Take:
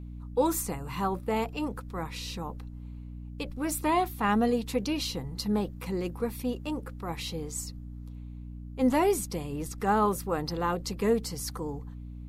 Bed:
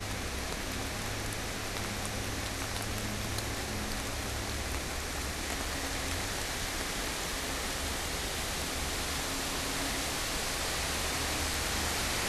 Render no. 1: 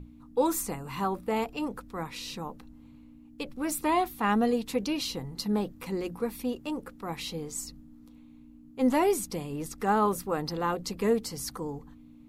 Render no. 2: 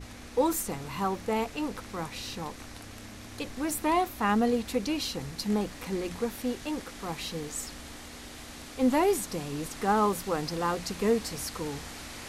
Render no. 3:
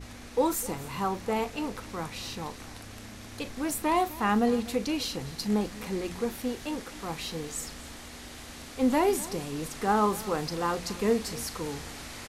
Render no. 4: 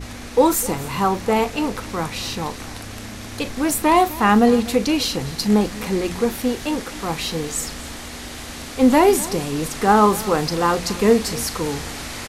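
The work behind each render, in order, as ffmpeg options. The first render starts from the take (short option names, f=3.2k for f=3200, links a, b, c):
-af "bandreject=f=60:t=h:w=6,bandreject=f=120:t=h:w=6,bandreject=f=180:t=h:w=6"
-filter_complex "[1:a]volume=-10.5dB[a];[0:a][a]amix=inputs=2:normalize=0"
-filter_complex "[0:a]asplit=2[a][b];[b]adelay=38,volume=-13dB[c];[a][c]amix=inputs=2:normalize=0,aecho=1:1:252:0.119"
-af "volume=10.5dB"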